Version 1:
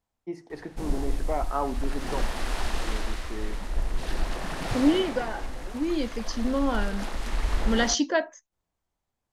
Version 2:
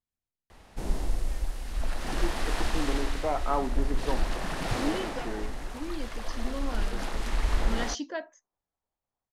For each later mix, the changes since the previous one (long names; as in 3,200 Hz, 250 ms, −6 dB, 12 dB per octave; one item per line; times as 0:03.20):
first voice: entry +1.95 s
second voice −10.5 dB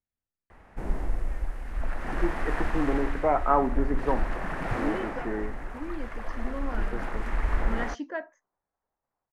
first voice +5.0 dB
master: add high shelf with overshoot 2,700 Hz −12 dB, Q 1.5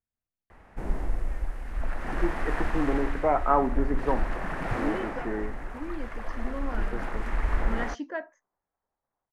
nothing changed